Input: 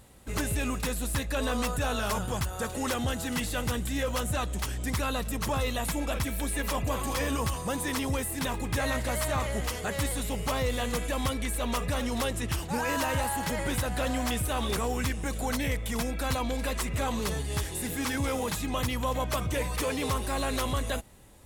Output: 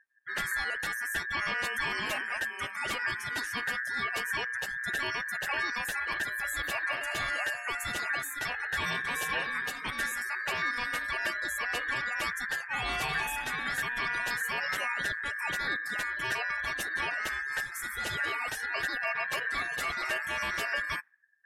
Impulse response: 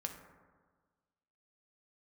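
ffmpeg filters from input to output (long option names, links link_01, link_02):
-af "aeval=exprs='val(0)*sin(2*PI*1700*n/s)':channel_layout=same,afftdn=noise_reduction=35:noise_floor=-44"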